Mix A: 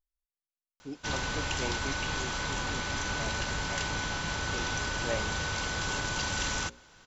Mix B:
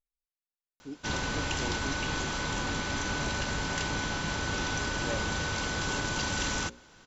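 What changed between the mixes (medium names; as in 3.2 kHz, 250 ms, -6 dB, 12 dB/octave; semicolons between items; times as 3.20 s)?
speech -5.5 dB; master: add peaking EQ 270 Hz +5 dB 1.6 oct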